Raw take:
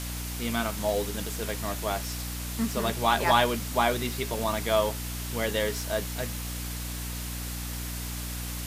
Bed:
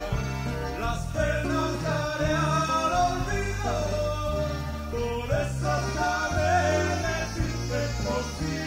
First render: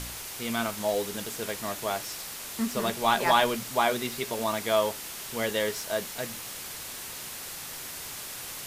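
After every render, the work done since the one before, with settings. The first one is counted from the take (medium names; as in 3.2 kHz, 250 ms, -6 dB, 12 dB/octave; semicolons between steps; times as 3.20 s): de-hum 60 Hz, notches 5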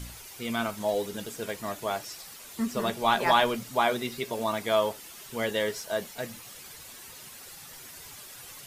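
noise reduction 10 dB, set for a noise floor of -40 dBFS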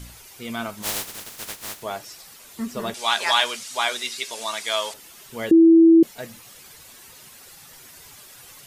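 0.82–1.81 s: spectral contrast reduction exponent 0.16; 2.94–4.94 s: frequency weighting ITU-R 468; 5.51–6.03 s: bleep 329 Hz -8.5 dBFS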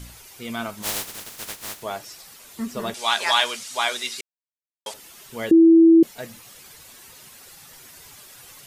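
4.21–4.86 s: mute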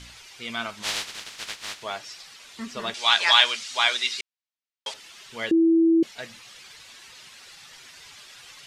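low-pass 4.3 kHz 12 dB/octave; tilt shelf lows -7.5 dB, about 1.2 kHz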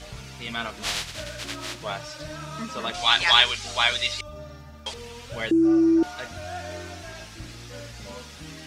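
add bed -12.5 dB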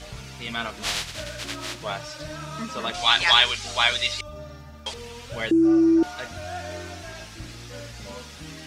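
trim +1 dB; peak limiter -3 dBFS, peak gain reduction 2 dB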